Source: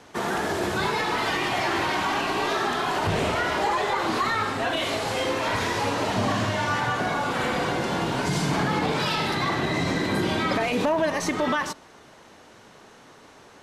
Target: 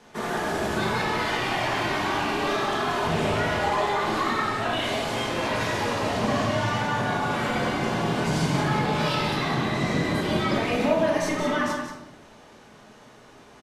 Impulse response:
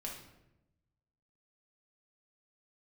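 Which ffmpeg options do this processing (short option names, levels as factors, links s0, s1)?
-filter_complex "[0:a]aecho=1:1:180:0.398[s0];[1:a]atrim=start_sample=2205[s1];[s0][s1]afir=irnorm=-1:irlink=0"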